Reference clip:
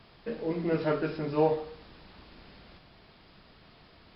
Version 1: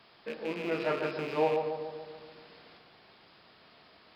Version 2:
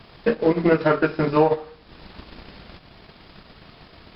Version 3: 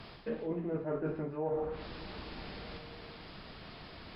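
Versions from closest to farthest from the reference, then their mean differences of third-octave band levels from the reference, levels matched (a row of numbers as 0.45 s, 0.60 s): 2, 1, 3; 1.5 dB, 4.5 dB, 8.5 dB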